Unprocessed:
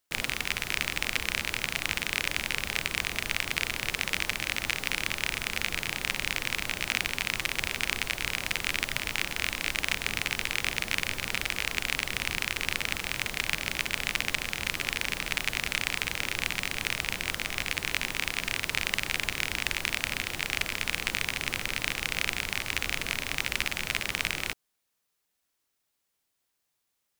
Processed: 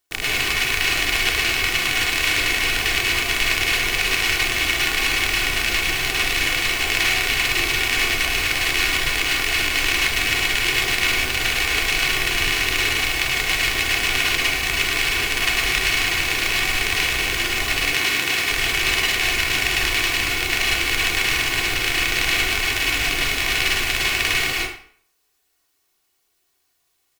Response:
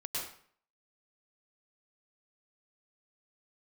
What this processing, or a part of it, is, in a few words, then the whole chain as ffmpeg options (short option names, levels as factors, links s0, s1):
microphone above a desk: -filter_complex "[0:a]aecho=1:1:2.7:0.55[s0];[1:a]atrim=start_sample=2205[s1];[s0][s1]afir=irnorm=-1:irlink=0,asettb=1/sr,asplit=3[s2][s3][s4];[s2]atrim=end=17.954[s5];[s3]atrim=start=17.95:end=18.5,asetpts=PTS-STARTPTS,afade=t=in:d=0.004:c=qsin,afade=t=out:st=0.546:d=0.004:c=qsin,highpass=90[s6];[s4]atrim=start=18.496[s7];[s5][s6]acrossfade=d=0.004:c1=hsin:c2=qsin[s8];[s8][s7]acrossfade=d=0.004:c1=qsin:c2=hsin,volume=2.37"